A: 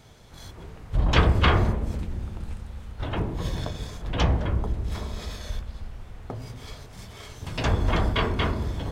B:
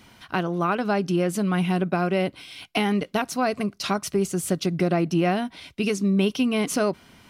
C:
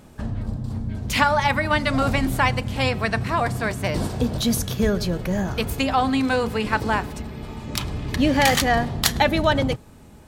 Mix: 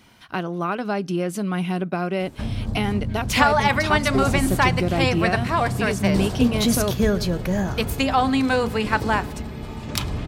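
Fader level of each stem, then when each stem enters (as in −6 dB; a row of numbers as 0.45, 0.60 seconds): −17.5, −1.5, +1.0 decibels; 2.25, 0.00, 2.20 seconds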